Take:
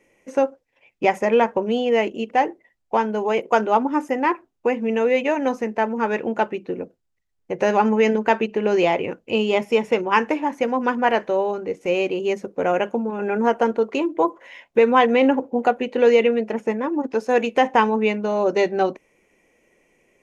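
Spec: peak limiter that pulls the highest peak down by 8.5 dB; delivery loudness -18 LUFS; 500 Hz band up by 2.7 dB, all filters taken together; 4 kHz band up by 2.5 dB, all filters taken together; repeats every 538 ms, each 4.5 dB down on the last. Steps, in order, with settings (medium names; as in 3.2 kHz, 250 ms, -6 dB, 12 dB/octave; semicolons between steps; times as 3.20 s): peaking EQ 500 Hz +3 dB; peaking EQ 4 kHz +4 dB; peak limiter -10.5 dBFS; feedback delay 538 ms, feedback 60%, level -4.5 dB; trim +2 dB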